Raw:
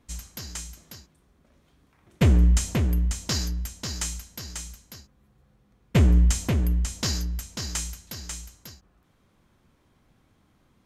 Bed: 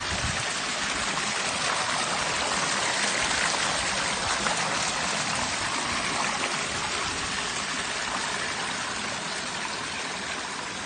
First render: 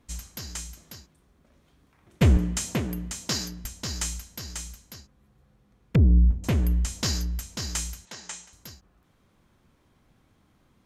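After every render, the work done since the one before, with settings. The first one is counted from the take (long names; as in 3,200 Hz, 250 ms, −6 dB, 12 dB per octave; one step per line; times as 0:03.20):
0:02.37–0:03.65: high-pass filter 140 Hz
0:04.94–0:06.44: treble cut that deepens with the level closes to 330 Hz, closed at −20 dBFS
0:08.05–0:08.53: loudspeaker in its box 250–8,100 Hz, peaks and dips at 290 Hz −7 dB, 860 Hz +5 dB, 1,800 Hz +3 dB, 4,800 Hz −5 dB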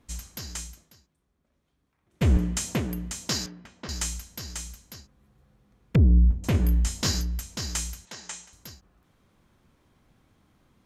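0:00.63–0:02.38: duck −12.5 dB, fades 0.28 s
0:03.46–0:03.89: band-pass filter 200–2,300 Hz
0:06.52–0:07.21: double-tracking delay 21 ms −4 dB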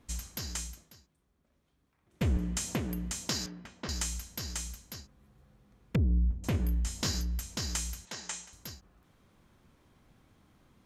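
downward compressor 2 to 1, threshold −33 dBFS, peak gain reduction 10 dB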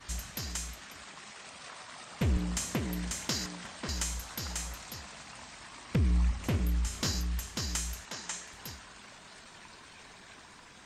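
mix in bed −20.5 dB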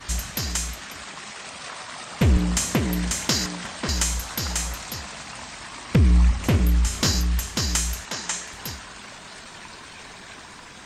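level +10.5 dB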